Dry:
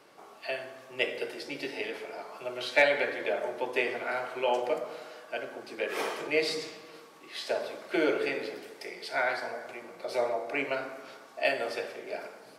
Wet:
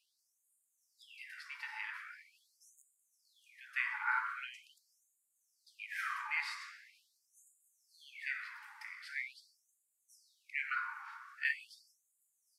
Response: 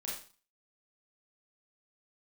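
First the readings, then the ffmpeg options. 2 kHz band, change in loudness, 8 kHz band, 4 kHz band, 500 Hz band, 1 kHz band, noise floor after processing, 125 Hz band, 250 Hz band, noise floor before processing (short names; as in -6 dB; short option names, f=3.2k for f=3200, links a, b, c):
-6.5 dB, -8.0 dB, -12.0 dB, -15.0 dB, under -40 dB, -9.5 dB, -81 dBFS, under -40 dB, under -40 dB, -52 dBFS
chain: -filter_complex "[0:a]highshelf=f=2.3k:t=q:w=1.5:g=-11,asplit=2[a][b];[1:a]atrim=start_sample=2205,lowpass=8.3k,adelay=85[c];[b][c]afir=irnorm=-1:irlink=0,volume=-17dB[d];[a][d]amix=inputs=2:normalize=0,afftfilt=real='re*gte(b*sr/1024,810*pow(6800/810,0.5+0.5*sin(2*PI*0.43*pts/sr)))':imag='im*gte(b*sr/1024,810*pow(6800/810,0.5+0.5*sin(2*PI*0.43*pts/sr)))':win_size=1024:overlap=0.75"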